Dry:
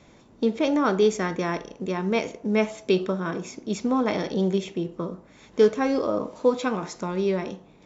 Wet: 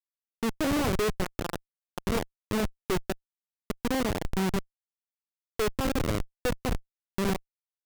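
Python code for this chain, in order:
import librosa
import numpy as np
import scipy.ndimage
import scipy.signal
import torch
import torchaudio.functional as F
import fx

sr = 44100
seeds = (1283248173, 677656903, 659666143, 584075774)

y = fx.hum_notches(x, sr, base_hz=50, count=3)
y = fx.schmitt(y, sr, flips_db=-20.5)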